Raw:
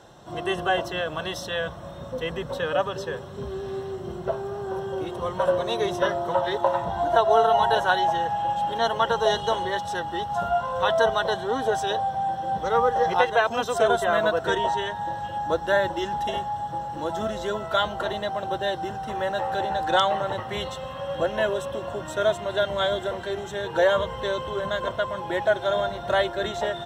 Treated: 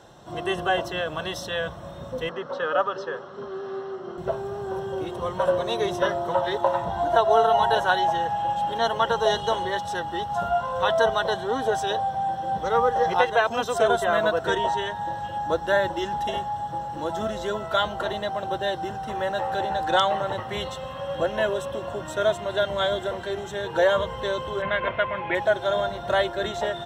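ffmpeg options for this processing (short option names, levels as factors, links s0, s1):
-filter_complex "[0:a]asettb=1/sr,asplit=3[s0][s1][s2];[s0]atrim=end=2.294[s3];[s1]atrim=start=2.29:end=4.18,asetpts=PTS-STARTPTS,afade=t=in:d=0.004:c=qsin,afade=t=out:st=1.886:d=0.004:c=qsin,highpass=270,equalizer=f=1300:t=q:w=4:g=9,equalizer=f=2400:t=q:w=4:g=-7,equalizer=f=3700:t=q:w=4:g=-6,lowpass=f=5100:w=0.5412,lowpass=f=5100:w=1.3066[s4];[s2]atrim=start=4.176[s5];[s3][s4]acrossfade=d=0.004:c1=hsin:c2=qsin[s6];[s6][s5]acrossfade=d=0.004:c1=qsin:c2=hsin,asettb=1/sr,asplit=3[s7][s8][s9];[s7]atrim=end=24.624[s10];[s8]atrim=start=24.62:end=25.35,asetpts=PTS-STARTPTS,afade=t=in:d=0.004:c=qsin,afade=t=out:st=0.726:d=0.004:c=qsin,lowpass=f=2300:t=q:w=7.9[s11];[s9]atrim=start=25.346[s12];[s10][s11]acrossfade=d=0.004:c1=hsin:c2=qsin[s13];[s13][s12]acrossfade=d=0.004:c1=qsin:c2=hsin"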